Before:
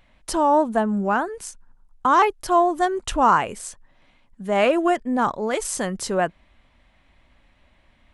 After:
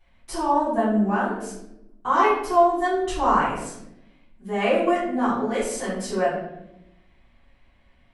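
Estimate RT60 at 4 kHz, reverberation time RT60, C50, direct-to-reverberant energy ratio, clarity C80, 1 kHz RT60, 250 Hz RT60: 0.55 s, 0.85 s, 2.0 dB, −13.5 dB, 5.5 dB, 0.70 s, 1.4 s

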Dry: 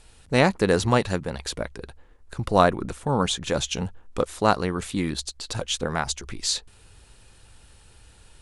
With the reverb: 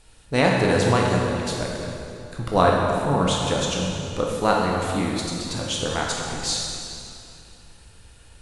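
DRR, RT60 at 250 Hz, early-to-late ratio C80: −2.0 dB, 3.1 s, 1.5 dB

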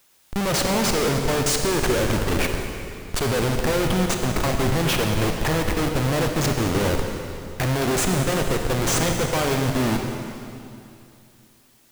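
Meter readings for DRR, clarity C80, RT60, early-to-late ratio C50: 3.5 dB, 4.5 dB, 2.7 s, 4.0 dB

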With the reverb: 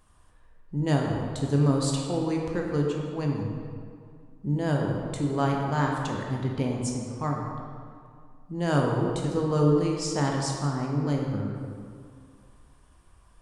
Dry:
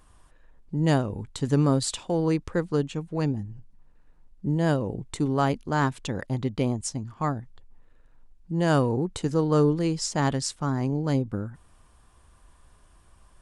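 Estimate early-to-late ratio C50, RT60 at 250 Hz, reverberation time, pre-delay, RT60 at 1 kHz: 1.5 dB, 2.2 s, 2.2 s, 14 ms, 2.2 s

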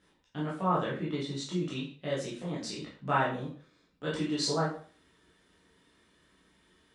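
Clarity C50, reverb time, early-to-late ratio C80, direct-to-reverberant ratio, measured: 5.0 dB, 0.45 s, 10.0 dB, −7.5 dB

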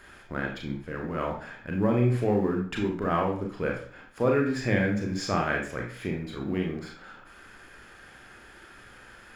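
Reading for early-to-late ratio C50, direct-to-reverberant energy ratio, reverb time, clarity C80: 5.0 dB, 0.0 dB, 0.50 s, 10.0 dB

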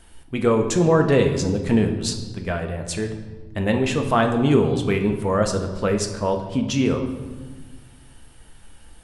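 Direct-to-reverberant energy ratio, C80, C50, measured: 4.0 dB, 10.0 dB, 8.0 dB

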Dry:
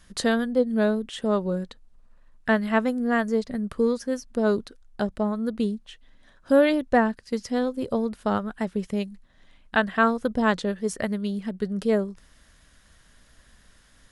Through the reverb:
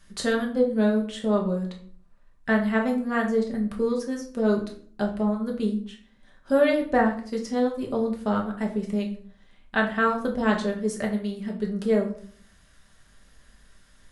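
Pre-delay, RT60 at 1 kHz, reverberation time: 5 ms, 0.45 s, 0.50 s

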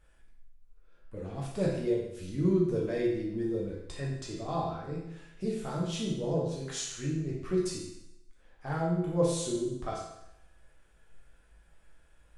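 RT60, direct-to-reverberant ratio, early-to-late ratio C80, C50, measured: 0.80 s, −5.0 dB, 5.0 dB, 2.0 dB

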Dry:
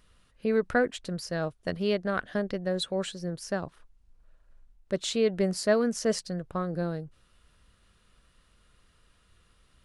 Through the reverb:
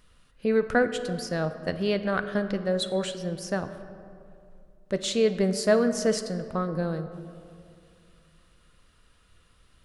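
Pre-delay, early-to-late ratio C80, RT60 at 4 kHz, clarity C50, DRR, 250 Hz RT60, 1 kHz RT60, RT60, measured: 4 ms, 12.0 dB, 1.2 s, 11.0 dB, 9.0 dB, 2.6 s, 2.3 s, 2.4 s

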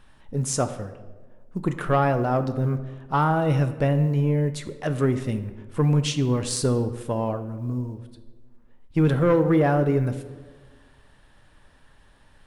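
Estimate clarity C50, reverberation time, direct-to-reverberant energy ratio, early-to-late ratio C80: 11.5 dB, 1.4 s, 9.5 dB, 13.5 dB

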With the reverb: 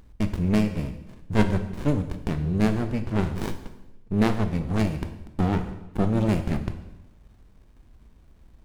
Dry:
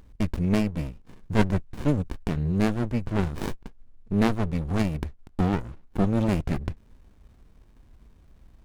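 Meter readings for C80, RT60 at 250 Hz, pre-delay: 12.5 dB, 1.2 s, 16 ms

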